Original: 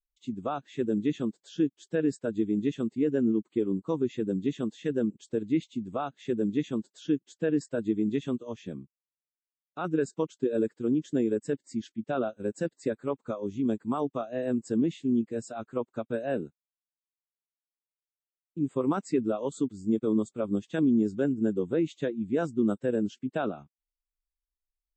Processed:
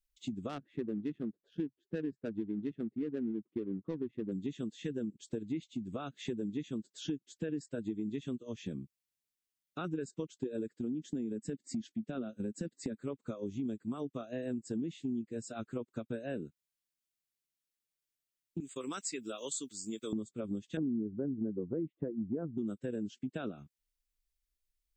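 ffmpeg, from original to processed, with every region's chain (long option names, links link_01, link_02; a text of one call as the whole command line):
ffmpeg -i in.wav -filter_complex "[0:a]asettb=1/sr,asplit=3[link_01][link_02][link_03];[link_01]atrim=end=0.494[link_04];[link_02]atrim=start=0.49:end=4.32,asetpts=PTS-STARTPTS,afade=type=in:duration=0.004:curve=qsin,afade=type=out:start_time=3.826:duration=0.004:curve=qsin,equalizer=frequency=130:width=4.9:gain=-7,adynamicsmooth=sensitivity=4:basefreq=790[link_05];[link_03]atrim=start=4.316[link_06];[link_04][link_05]acrossfade=duration=0.004:curve1=hsin:curve2=qsin[link_07];[link_07][link_06]acrossfade=duration=0.004:curve1=qsin:curve2=hsin,asettb=1/sr,asplit=3[link_08][link_09][link_10];[link_08]atrim=end=10.794[link_11];[link_09]atrim=start=10.79:end=12.99,asetpts=PTS-STARTPTS,afade=type=in:duration=0.004:curve=qsin,afade=type=out:start_time=2.196:duration=0.004:curve=qsin,equalizer=frequency=220:width=1.7:gain=8,acompressor=threshold=-29dB:ratio=2:attack=3.2:release=140:knee=1:detection=peak[link_12];[link_10]atrim=start=12.986[link_13];[link_11][link_12]acrossfade=duration=0.004:curve1=hsin:curve2=qsin[link_14];[link_14][link_13]acrossfade=duration=0.004:curve1=qsin:curve2=hsin,asettb=1/sr,asplit=3[link_15][link_16][link_17];[link_15]atrim=end=18.604[link_18];[link_16]atrim=start=18.6:end=20.13,asetpts=PTS-STARTPTS,afade=type=in:duration=0.004:curve=qsin,afade=type=out:start_time=1.526:duration=0.004:curve=qsin,agate=range=-33dB:threshold=-46dB:ratio=3:release=100:detection=peak,highpass=frequency=1400:poles=1,highshelf=frequency=2600:gain=11.5[link_19];[link_17]atrim=start=20.126[link_20];[link_18][link_19]acrossfade=duration=0.004:curve1=hsin:curve2=qsin[link_21];[link_21][link_20]acrossfade=duration=0.004:curve1=qsin:curve2=hsin,asettb=1/sr,asplit=3[link_22][link_23][link_24];[link_22]atrim=end=20.774[link_25];[link_23]atrim=start=20.77:end=22.58,asetpts=PTS-STARTPTS,afade=type=in:duration=0.004:curve=qsin,afade=type=out:start_time=1.806:duration=0.004:curve=qsin,lowpass=frequency=1100:width=0.5412,lowpass=frequency=1100:width=1.3066,acontrast=27[link_26];[link_24]atrim=start=22.576[link_27];[link_25][link_26]acrossfade=duration=0.004:curve1=hsin:curve2=qsin[link_28];[link_28][link_27]acrossfade=duration=0.004:curve1=qsin:curve2=hsin,equalizer=frequency=850:width=1.1:gain=-13,acompressor=threshold=-42dB:ratio=4,volume=5.5dB" out.wav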